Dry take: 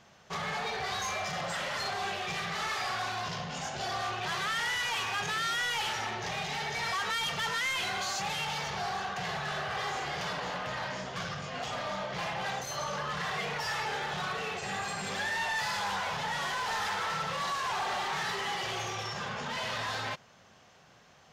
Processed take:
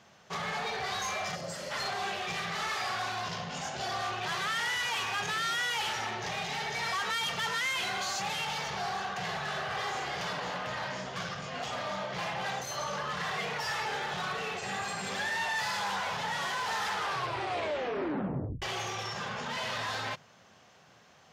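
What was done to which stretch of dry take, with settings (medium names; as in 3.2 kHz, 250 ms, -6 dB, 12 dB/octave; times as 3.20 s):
1.35–1.71 s: time-frequency box 670–4100 Hz -10 dB
16.91 s: tape stop 1.71 s
whole clip: high-pass 67 Hz; hum notches 50/100/150 Hz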